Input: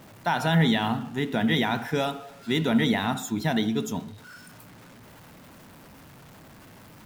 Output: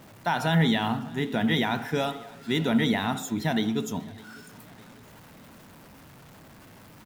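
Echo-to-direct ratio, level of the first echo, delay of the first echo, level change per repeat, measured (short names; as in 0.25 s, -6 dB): -22.0 dB, -23.0 dB, 0.605 s, -6.0 dB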